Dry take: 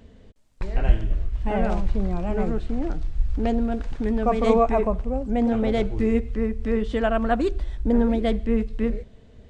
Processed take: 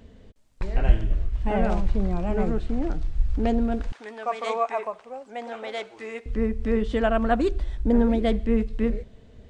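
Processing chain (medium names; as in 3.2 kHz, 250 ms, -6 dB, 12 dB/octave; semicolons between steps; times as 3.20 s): 3.92–6.26 s: high-pass 820 Hz 12 dB/octave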